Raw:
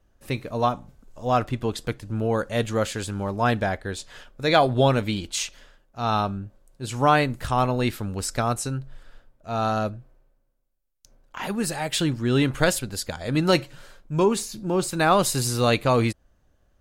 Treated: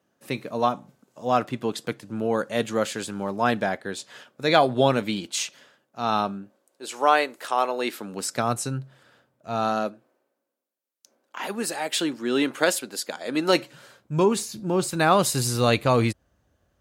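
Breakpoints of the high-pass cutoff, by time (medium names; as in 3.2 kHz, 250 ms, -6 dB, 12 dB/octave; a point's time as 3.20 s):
high-pass 24 dB/octave
6.23 s 150 Hz
6.93 s 360 Hz
7.73 s 360 Hz
8.56 s 110 Hz
9.50 s 110 Hz
9.96 s 250 Hz
13.48 s 250 Hz
14.20 s 61 Hz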